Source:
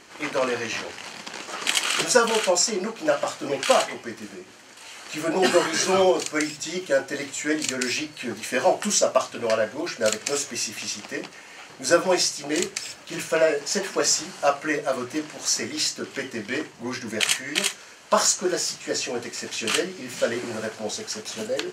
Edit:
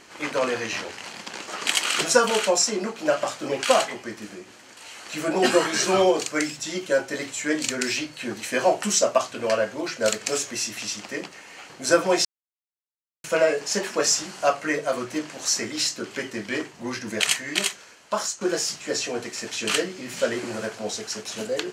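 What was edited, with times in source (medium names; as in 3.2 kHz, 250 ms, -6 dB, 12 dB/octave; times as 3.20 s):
12.25–13.24 s: mute
17.56–18.41 s: fade out, to -11.5 dB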